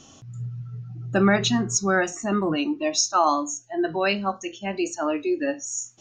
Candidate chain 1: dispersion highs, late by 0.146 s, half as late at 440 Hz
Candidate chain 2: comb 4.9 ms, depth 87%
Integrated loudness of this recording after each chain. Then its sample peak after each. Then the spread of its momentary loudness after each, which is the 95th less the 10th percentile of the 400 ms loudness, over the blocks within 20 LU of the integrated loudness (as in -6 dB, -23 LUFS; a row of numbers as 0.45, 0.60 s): -24.0, -21.0 LUFS; -7.0, -3.0 dBFS; 14, 12 LU